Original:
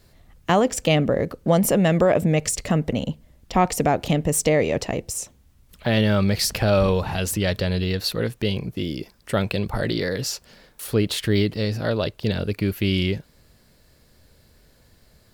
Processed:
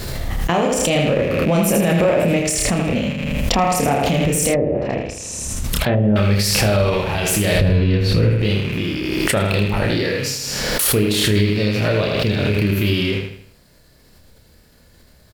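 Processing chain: rattling part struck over -33 dBFS, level -22 dBFS; 7.55–8.42 RIAA curve playback; doubler 29 ms -3.5 dB; feedback echo 80 ms, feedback 40%, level -4.5 dB; 4.53–6.16 treble ducked by the level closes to 560 Hz, closed at -13.5 dBFS; maximiser +8 dB; backwards sustainer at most 22 dB/s; gain -7 dB

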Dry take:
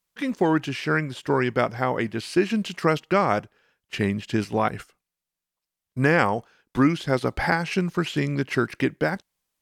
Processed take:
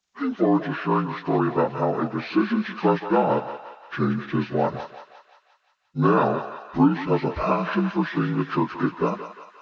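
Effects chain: inharmonic rescaling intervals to 78%; thinning echo 0.175 s, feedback 64%, high-pass 780 Hz, level -8 dB; gain +2 dB

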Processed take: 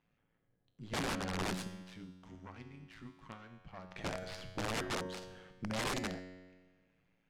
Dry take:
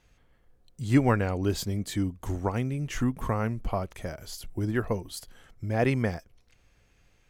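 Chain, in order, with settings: tracing distortion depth 0.37 ms; AM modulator 110 Hz, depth 75%; resonant low shelf 120 Hz -9 dB, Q 1.5; vocal rider within 5 dB 0.5 s; 1.67–3.88 passive tone stack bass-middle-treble 5-5-5; resonator 92 Hz, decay 1.4 s, harmonics all, mix 80%; wrapped overs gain 39 dB; low-pass opened by the level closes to 2900 Hz, open at -38 dBFS; gain +9 dB

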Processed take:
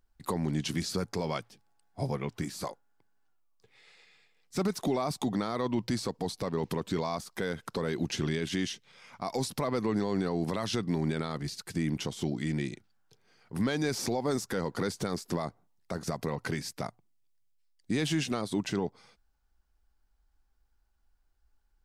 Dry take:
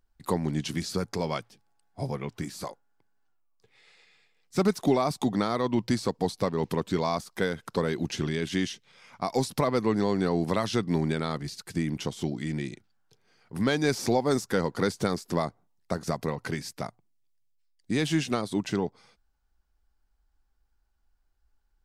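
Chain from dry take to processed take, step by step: limiter -20.5 dBFS, peak gain reduction 8.5 dB

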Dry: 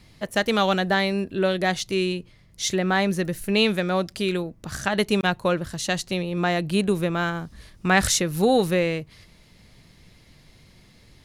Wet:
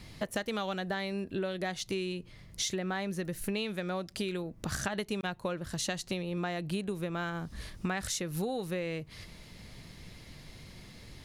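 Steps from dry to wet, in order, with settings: compressor 10:1, threshold -34 dBFS, peak gain reduction 21 dB; gain +3 dB

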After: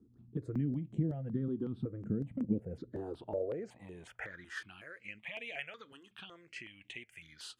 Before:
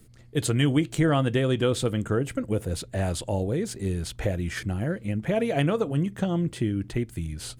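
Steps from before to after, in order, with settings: compressor, threshold -27 dBFS, peak gain reduction 10 dB; band-pass sweep 210 Hz -> 2600 Hz, 2.47–4.81; step phaser 5.4 Hz 600–4800 Hz; gain +4.5 dB

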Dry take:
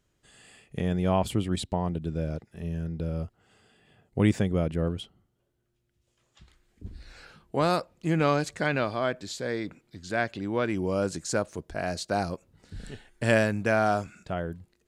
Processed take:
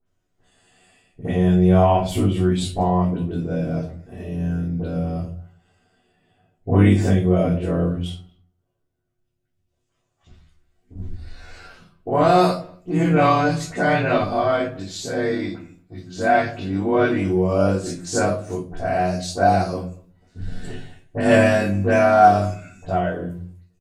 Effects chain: gate -52 dBFS, range -9 dB; bell 690 Hz +6.5 dB 0.42 oct; dispersion highs, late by 43 ms, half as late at 2300 Hz; granular stretch 1.6×, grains 58 ms; speakerphone echo 0.23 s, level -27 dB; shoebox room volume 230 m³, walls furnished, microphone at 3.5 m

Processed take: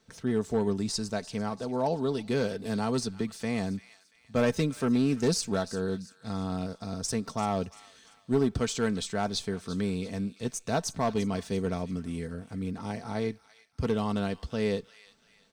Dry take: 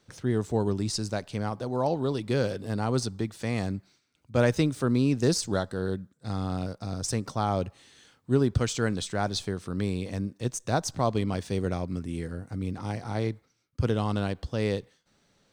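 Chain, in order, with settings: hard clip -17 dBFS, distortion -21 dB; comb 4.5 ms, depth 50%; thin delay 0.342 s, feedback 39%, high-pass 1700 Hz, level -14 dB; 2.65–3.37 three-band squash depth 40%; gain -2 dB

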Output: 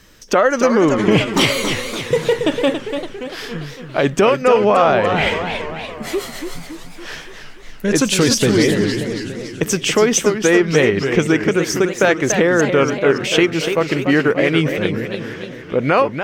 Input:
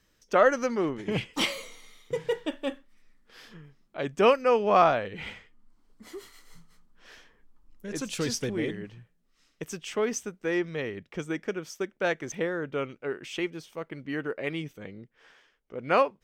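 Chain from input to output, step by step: compressor 4:1, threshold -30 dBFS, peak gain reduction 13 dB; maximiser +23.5 dB; warbling echo 0.285 s, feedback 57%, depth 197 cents, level -7.5 dB; gain -3.5 dB

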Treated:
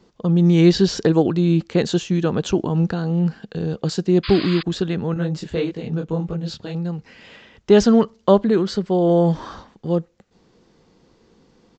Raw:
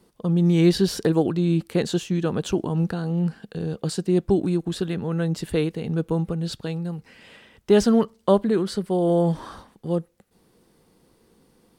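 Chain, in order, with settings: 4.23–4.63 painted sound noise 970–5000 Hz -35 dBFS; downsampling 16000 Hz; 5.14–6.75 detuned doubles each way 57 cents; gain +4 dB

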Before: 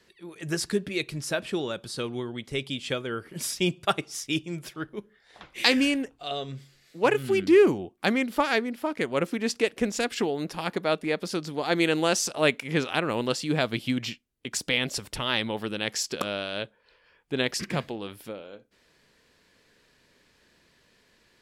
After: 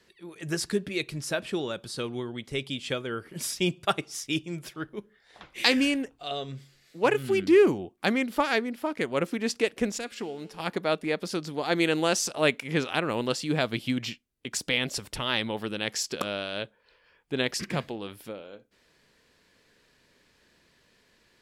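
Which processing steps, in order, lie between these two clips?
9.98–10.6 resonator 110 Hz, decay 1.7 s, mix 60%; gain -1 dB

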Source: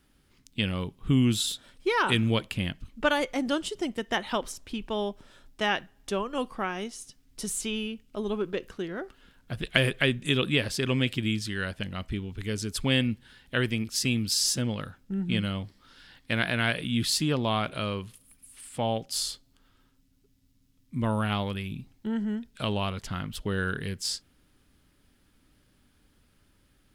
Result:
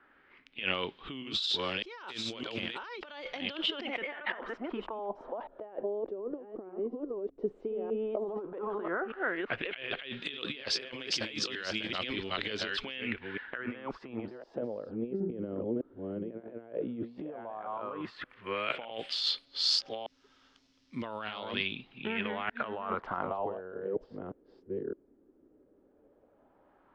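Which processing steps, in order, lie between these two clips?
reverse delay 0.608 s, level -3 dB; three-band isolator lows -22 dB, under 320 Hz, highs -17 dB, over 4700 Hz; negative-ratio compressor -39 dBFS, ratio -1; LFO low-pass sine 0.11 Hz 370–5900 Hz

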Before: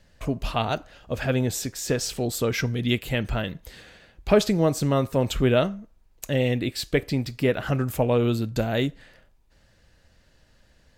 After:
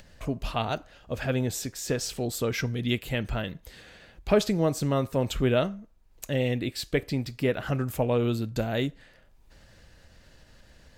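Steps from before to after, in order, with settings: upward compressor, threshold -40 dBFS; gain -3.5 dB

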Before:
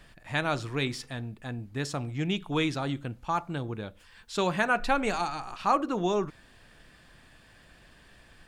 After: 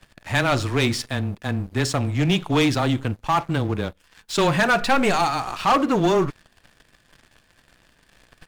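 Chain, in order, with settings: frequency shift -13 Hz; sample leveller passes 3

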